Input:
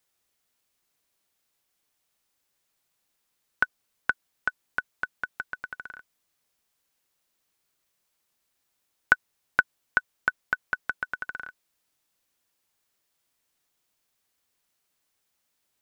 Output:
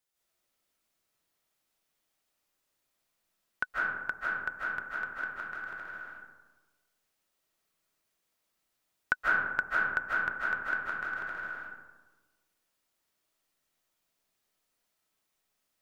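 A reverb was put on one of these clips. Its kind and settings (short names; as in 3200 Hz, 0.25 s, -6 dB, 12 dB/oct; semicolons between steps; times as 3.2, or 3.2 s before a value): digital reverb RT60 1.3 s, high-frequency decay 0.4×, pre-delay 0.115 s, DRR -7 dB; gain -9 dB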